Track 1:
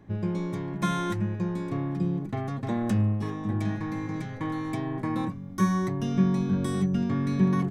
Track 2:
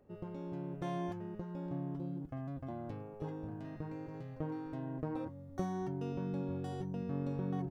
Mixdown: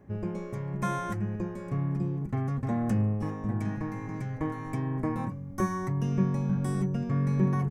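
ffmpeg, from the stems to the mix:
-filter_complex "[0:a]volume=-2.5dB[a];[1:a]lowshelf=f=250:g=11,adelay=6.7,volume=0.5dB[b];[a][b]amix=inputs=2:normalize=0,equalizer=f=3.7k:w=2.3:g=-13"

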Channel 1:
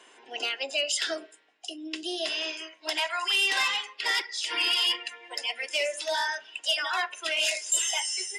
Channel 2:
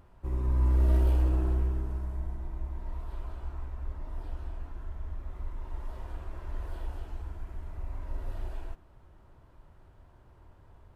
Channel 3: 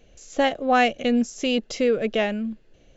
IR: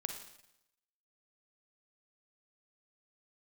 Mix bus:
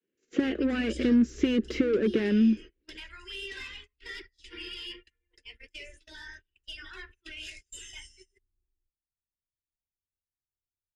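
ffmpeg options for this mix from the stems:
-filter_complex "[0:a]highshelf=f=7.7k:g=-7,flanger=delay=1.6:depth=6.4:regen=-50:speed=1.7:shape=sinusoidal,volume=1.5dB[a];[1:a]flanger=delay=6.8:depth=4.9:regen=-80:speed=0.77:shape=triangular,adelay=150,volume=-14dB[b];[2:a]asplit=2[c][d];[d]highpass=f=720:p=1,volume=29dB,asoftclip=type=tanh:threshold=-7.5dB[e];[c][e]amix=inputs=2:normalize=0,lowpass=f=1.8k:p=1,volume=-6dB,agate=range=-33dB:threshold=-35dB:ratio=3:detection=peak,highpass=230,volume=2dB[f];[b][f]amix=inputs=2:normalize=0,lowpass=f=2.7k:p=1,acompressor=threshold=-17dB:ratio=2.5,volume=0dB[g];[a][g]amix=inputs=2:normalize=0,highshelf=f=2.7k:g=-6,agate=range=-28dB:threshold=-38dB:ratio=16:detection=peak,firequalizer=gain_entry='entry(380,0);entry(660,-30);entry(1600,-9)':delay=0.05:min_phase=1"

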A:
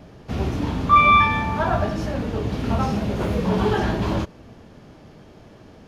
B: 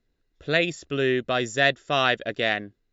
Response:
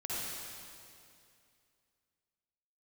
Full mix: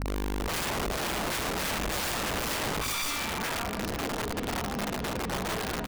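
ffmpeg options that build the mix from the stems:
-filter_complex "[0:a]acompressor=threshold=-25dB:ratio=16,aemphasis=mode=production:type=75fm,aecho=1:1:4.2:0.7,adelay=1850,volume=-3.5dB,asplit=3[a][b][c];[b]volume=-18dB[d];[c]volume=-15dB[e];[1:a]lowshelf=f=620:t=q:w=1.5:g=13,alimiter=limit=-4.5dB:level=0:latency=1:release=446,aeval=exprs='val(0)+0.0355*(sin(2*PI*50*n/s)+sin(2*PI*2*50*n/s)/2+sin(2*PI*3*50*n/s)/3+sin(2*PI*4*50*n/s)/4+sin(2*PI*5*50*n/s)/5)':c=same,volume=-1dB,asplit=2[f][g];[g]volume=-13dB[h];[2:a]atrim=start_sample=2205[i];[d][i]afir=irnorm=-1:irlink=0[j];[e][h]amix=inputs=2:normalize=0,aecho=0:1:78|156|234|312|390|468:1|0.46|0.212|0.0973|0.0448|0.0206[k];[a][f][j][k]amix=inputs=4:normalize=0,afftfilt=real='re*lt(hypot(re,im),0.501)':imag='im*lt(hypot(re,im),0.501)':win_size=1024:overlap=0.75,adynamicsmooth=sensitivity=4:basefreq=1.5k,aeval=exprs='(mod(20*val(0)+1,2)-1)/20':c=same"

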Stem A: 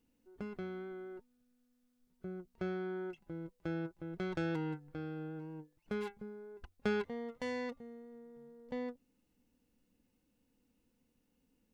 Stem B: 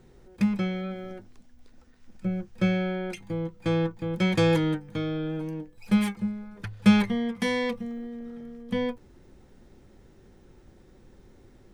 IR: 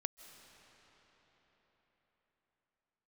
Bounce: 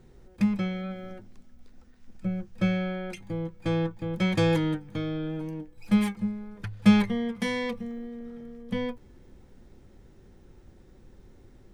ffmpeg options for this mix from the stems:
-filter_complex "[0:a]volume=-4dB[a];[1:a]volume=-1,volume=-2.5dB,asplit=2[b][c];[c]volume=-23dB[d];[2:a]atrim=start_sample=2205[e];[d][e]afir=irnorm=-1:irlink=0[f];[a][b][f]amix=inputs=3:normalize=0,lowshelf=f=140:g=5"

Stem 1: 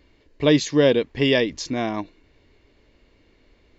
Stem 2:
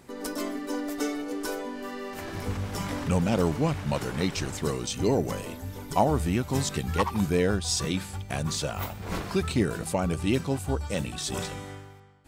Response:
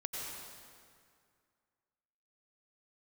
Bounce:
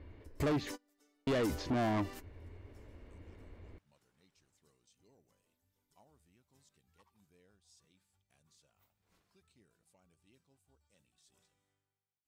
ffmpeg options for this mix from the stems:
-filter_complex "[0:a]lowpass=1.2k,equalizer=f=87:t=o:w=0.6:g=13,acompressor=threshold=-23dB:ratio=4,volume=1.5dB,asplit=3[a][b][c];[a]atrim=end=0.72,asetpts=PTS-STARTPTS,afade=t=out:st=0.716:d=0.004:c=hsin[d];[b]atrim=start=0.72:end=1.27,asetpts=PTS-STARTPTS,volume=0[e];[c]atrim=start=1.27,asetpts=PTS-STARTPTS,afade=t=in:d=0.004:c=hsin[f];[d][e][f]concat=n=3:v=0:a=1,asplit=2[g][h];[1:a]adynamicequalizer=threshold=0.01:dfrequency=1600:dqfactor=0.7:tfrequency=1600:tqfactor=0.7:attack=5:release=100:ratio=0.375:range=1.5:mode=cutabove:tftype=highshelf,volume=-14dB[i];[h]apad=whole_len=541148[j];[i][j]sidechaingate=range=-31dB:threshold=-45dB:ratio=16:detection=peak[k];[g][k]amix=inputs=2:normalize=0,highshelf=f=2.1k:g=10.5,asoftclip=type=tanh:threshold=-29dB"

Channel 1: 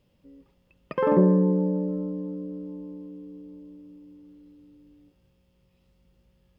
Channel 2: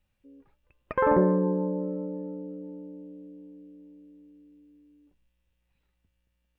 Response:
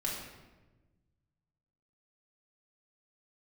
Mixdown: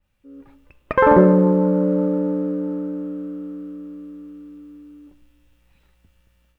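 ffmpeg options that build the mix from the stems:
-filter_complex "[0:a]aeval=exprs='abs(val(0))':c=same,highpass=f=1.3k:t=q:w=5.6,volume=-18.5dB[a];[1:a]adynamicequalizer=threshold=0.00562:dfrequency=2600:dqfactor=0.7:tfrequency=2600:tqfactor=0.7:attack=5:release=100:ratio=0.375:range=3.5:mode=boostabove:tftype=highshelf,volume=3dB,asplit=2[b][c];[c]volume=-15dB[d];[2:a]atrim=start_sample=2205[e];[d][e]afir=irnorm=-1:irlink=0[f];[a][b][f]amix=inputs=3:normalize=0,dynaudnorm=f=250:g=3:m=11dB"

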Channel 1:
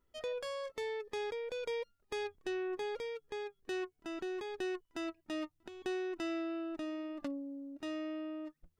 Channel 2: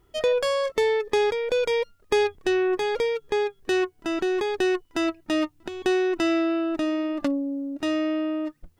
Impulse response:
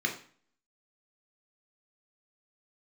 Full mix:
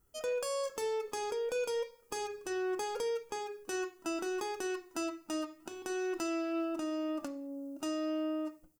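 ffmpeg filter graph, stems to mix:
-filter_complex "[0:a]volume=35dB,asoftclip=hard,volume=-35dB,volume=-2dB,asplit=2[a][b];[b]volume=-22dB[c];[1:a]aexciter=amount=5.4:drive=6.4:freq=4.9k,volume=-1,adelay=0.5,volume=-16dB,asplit=2[d][e];[e]volume=-10.5dB[f];[2:a]atrim=start_sample=2205[g];[c][f]amix=inputs=2:normalize=0[h];[h][g]afir=irnorm=-1:irlink=0[i];[a][d][i]amix=inputs=3:normalize=0,dynaudnorm=f=140:g=5:m=5dB,alimiter=level_in=2.5dB:limit=-24dB:level=0:latency=1:release=317,volume=-2.5dB"

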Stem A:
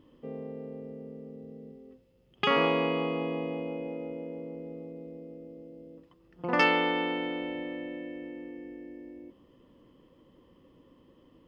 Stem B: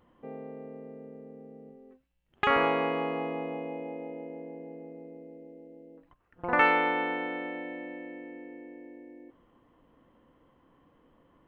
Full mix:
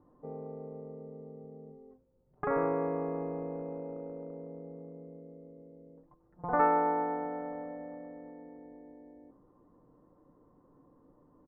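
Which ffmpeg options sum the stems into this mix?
-filter_complex "[0:a]acompressor=threshold=-32dB:ratio=6,aeval=exprs='0.178*(cos(1*acos(clip(val(0)/0.178,-1,1)))-cos(1*PI/2))+0.0794*(cos(7*acos(clip(val(0)/0.178,-1,1)))-cos(7*PI/2))':c=same,volume=-13dB[a];[1:a]aecho=1:1:6.7:0.92,volume=-5dB[b];[a][b]amix=inputs=2:normalize=0,lowpass=f=1.2k:w=0.5412,lowpass=f=1.2k:w=1.3066"

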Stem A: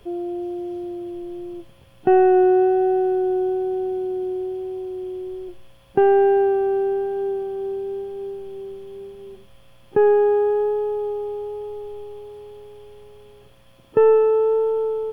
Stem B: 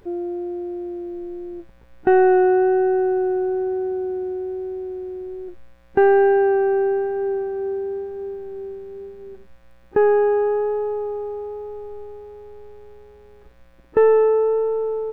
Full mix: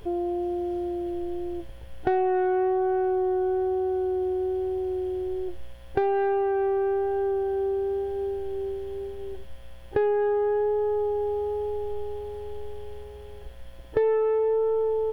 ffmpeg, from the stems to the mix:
-filter_complex "[0:a]volume=-0.5dB[a];[1:a]lowshelf=f=190:g=10,asoftclip=type=tanh:threshold=-12.5dB,volume=-1,volume=-0.5dB[b];[a][b]amix=inputs=2:normalize=0,acompressor=threshold=-25dB:ratio=2.5"

